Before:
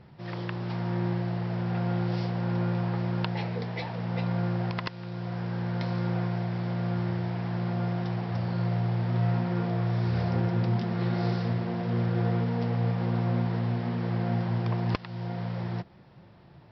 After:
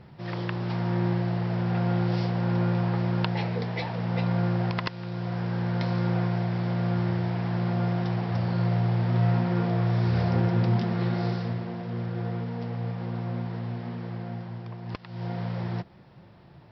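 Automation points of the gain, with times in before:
10.83 s +3 dB
11.88 s -4.5 dB
13.91 s -4.5 dB
14.8 s -11 dB
15.24 s +1.5 dB

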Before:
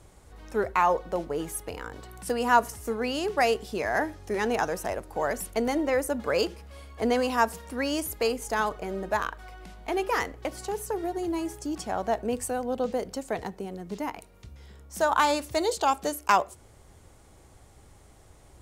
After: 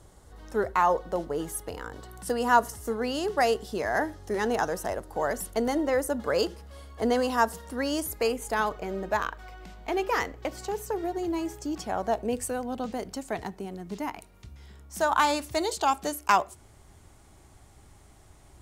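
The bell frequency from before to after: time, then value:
bell -10 dB 0.25 oct
8.02 s 2400 Hz
8.76 s 10000 Hz
11.78 s 10000 Hz
12.13 s 2000 Hz
12.68 s 500 Hz

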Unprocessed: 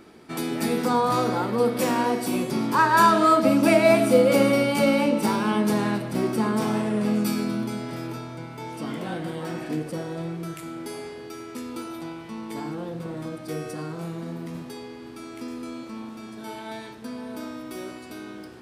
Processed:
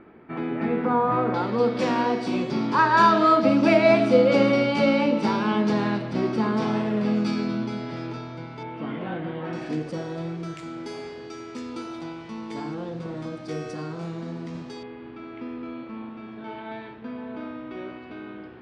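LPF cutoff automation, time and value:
LPF 24 dB/oct
2300 Hz
from 1.34 s 5100 Hz
from 8.63 s 3000 Hz
from 9.53 s 6500 Hz
from 14.83 s 3000 Hz

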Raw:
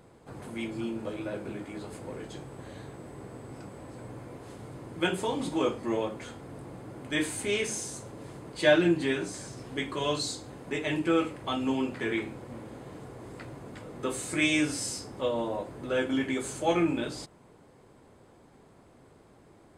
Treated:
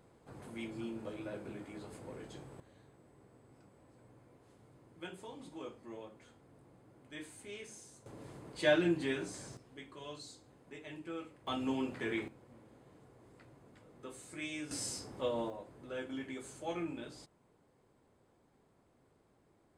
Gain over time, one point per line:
-8 dB
from 2.6 s -18.5 dB
from 8.06 s -7 dB
from 9.57 s -18 dB
from 11.47 s -6.5 dB
from 12.28 s -16.5 dB
from 14.71 s -6 dB
from 15.5 s -13.5 dB

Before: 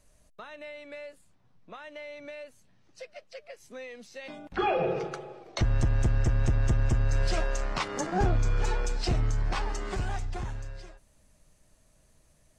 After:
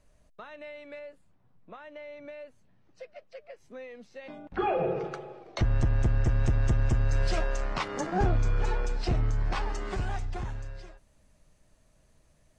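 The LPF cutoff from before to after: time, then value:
LPF 6 dB/oct
2900 Hz
from 0.99 s 1500 Hz
from 5.04 s 3400 Hz
from 6.27 s 6400 Hz
from 7.39 s 4200 Hz
from 8.51 s 2700 Hz
from 9.41 s 4800 Hz

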